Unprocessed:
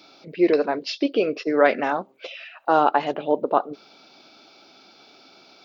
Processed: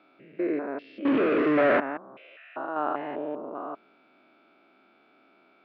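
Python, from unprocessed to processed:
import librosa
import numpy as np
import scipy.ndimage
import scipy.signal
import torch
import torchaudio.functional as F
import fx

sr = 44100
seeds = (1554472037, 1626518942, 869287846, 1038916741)

y = fx.spec_steps(x, sr, hold_ms=200)
y = fx.power_curve(y, sr, exponent=0.35, at=(1.05, 1.8))
y = fx.cabinet(y, sr, low_hz=160.0, low_slope=12, high_hz=2300.0, hz=(170.0, 480.0, 830.0), db=(-4, -6, -7))
y = F.gain(torch.from_numpy(y), -3.5).numpy()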